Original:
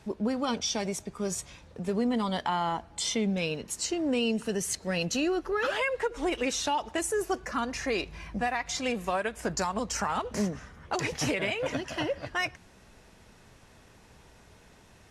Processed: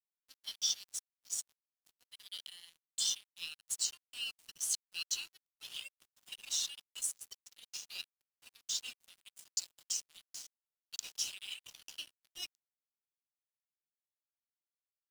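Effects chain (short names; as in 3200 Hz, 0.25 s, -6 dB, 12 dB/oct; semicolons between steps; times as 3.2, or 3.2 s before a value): steep high-pass 2800 Hz 72 dB/oct; crossover distortion -45 dBFS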